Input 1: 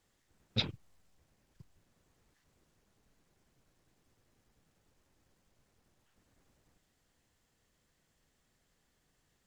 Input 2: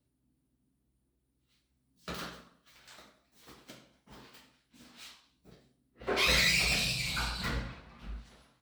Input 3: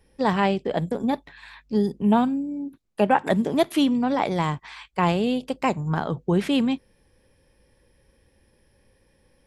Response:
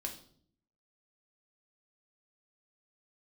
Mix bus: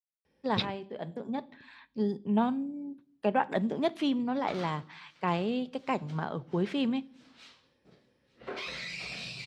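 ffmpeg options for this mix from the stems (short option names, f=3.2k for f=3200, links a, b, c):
-filter_complex "[0:a]aeval=exprs='sgn(val(0))*max(abs(val(0))-0.00335,0)':c=same,volume=2.5dB,asplit=2[a][b];[1:a]alimiter=level_in=2dB:limit=-24dB:level=0:latency=1:release=312,volume=-2dB,adelay=2400,volume=-2.5dB,asplit=2[c][d];[d]volume=-21.5dB[e];[2:a]adelay=250,volume=-9dB,asplit=2[f][g];[g]volume=-13.5dB[h];[b]apad=whole_len=428324[i];[f][i]sidechaincompress=threshold=-38dB:ratio=3:attack=16:release=1080[j];[3:a]atrim=start_sample=2205[k];[h][k]afir=irnorm=-1:irlink=0[l];[e]aecho=0:1:887|1774|2661|3548|4435:1|0.37|0.137|0.0507|0.0187[m];[a][c][j][l][m]amix=inputs=5:normalize=0,highpass=120,lowpass=5.1k"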